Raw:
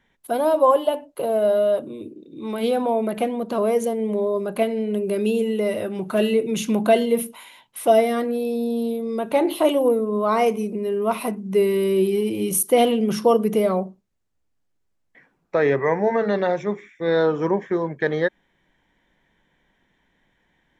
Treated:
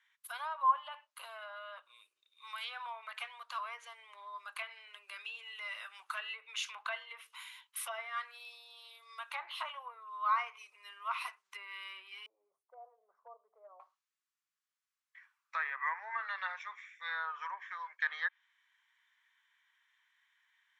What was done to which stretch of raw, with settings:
12.26–13.80 s: elliptic band-pass 170–660 Hz, stop band 60 dB
whole clip: low-pass that closes with the level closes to 1.6 kHz, closed at -14.5 dBFS; elliptic high-pass 1.1 kHz, stop band 80 dB; trim -4 dB

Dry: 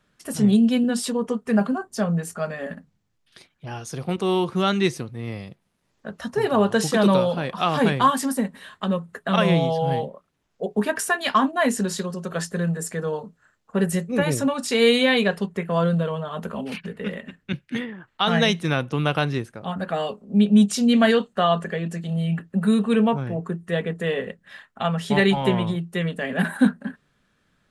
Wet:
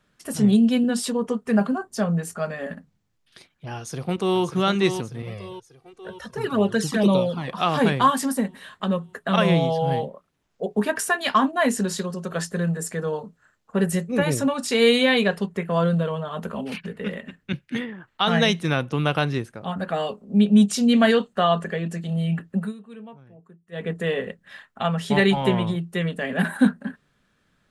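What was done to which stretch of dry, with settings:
3.76–4.41 s: echo throw 590 ms, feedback 60%, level -8 dB
5.22–7.48 s: touch-sensitive flanger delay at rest 2.9 ms, full sweep at -13.5 dBFS
22.55–23.89 s: dip -22 dB, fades 0.18 s

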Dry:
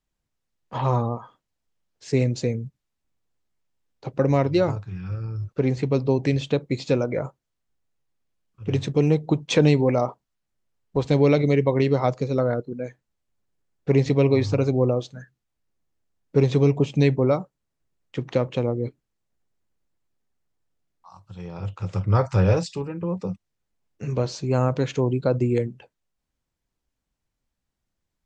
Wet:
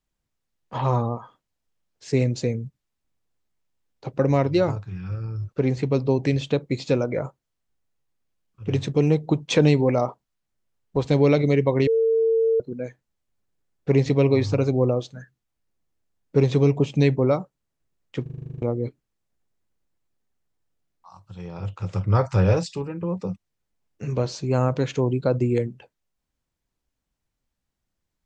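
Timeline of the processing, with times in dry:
11.87–12.60 s: bleep 451 Hz -16.5 dBFS
18.22 s: stutter in place 0.04 s, 10 plays

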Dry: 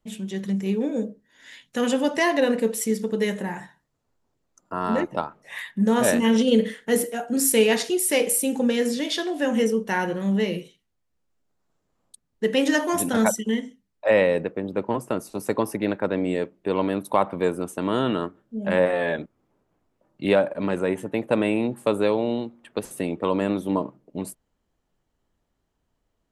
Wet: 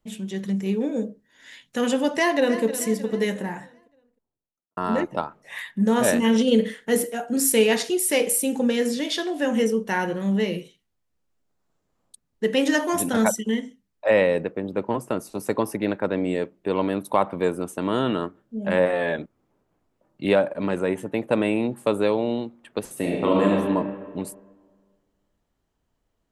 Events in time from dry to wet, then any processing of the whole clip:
2.10–2.63 s: echo throw 310 ms, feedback 50%, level -13 dB
3.30–4.77 s: studio fade out
22.94–23.49 s: reverb throw, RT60 1.7 s, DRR -2.5 dB

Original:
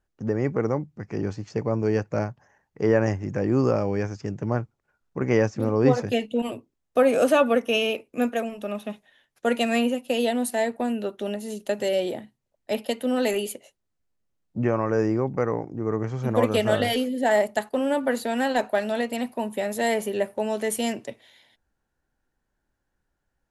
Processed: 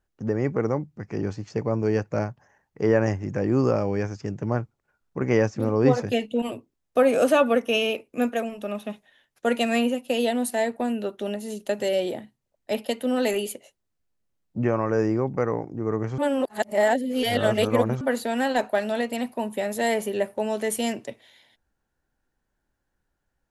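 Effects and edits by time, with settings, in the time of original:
16.18–18.01 s: reverse

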